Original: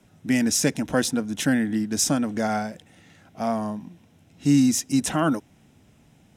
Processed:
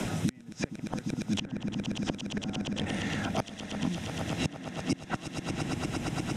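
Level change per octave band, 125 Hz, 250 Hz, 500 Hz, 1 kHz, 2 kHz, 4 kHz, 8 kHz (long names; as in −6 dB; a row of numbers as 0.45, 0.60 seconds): −3.0, −10.0, −9.0, −8.0, −6.5, −5.5, −15.5 decibels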